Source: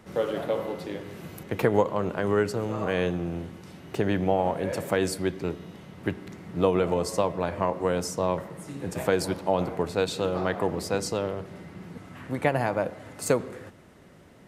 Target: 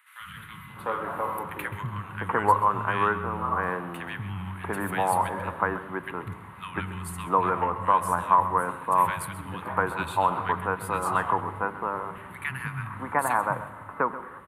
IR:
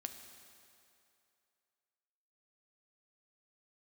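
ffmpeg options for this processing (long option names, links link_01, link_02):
-filter_complex "[0:a]firequalizer=gain_entry='entry(100,0);entry(340,-7);entry(610,-7);entry(1000,14);entry(2000,4);entry(3600,-5);entry(5300,-23);entry(10000,5);entry(15000,-1)':delay=0.05:min_phase=1,acrossover=split=180|1800[link_01][link_02][link_03];[link_01]adelay=200[link_04];[link_02]adelay=700[link_05];[link_04][link_05][link_03]amix=inputs=3:normalize=0,asplit=2[link_06][link_07];[1:a]atrim=start_sample=2205,asetrate=70560,aresample=44100,adelay=131[link_08];[link_07][link_08]afir=irnorm=-1:irlink=0,volume=-6.5dB[link_09];[link_06][link_09]amix=inputs=2:normalize=0"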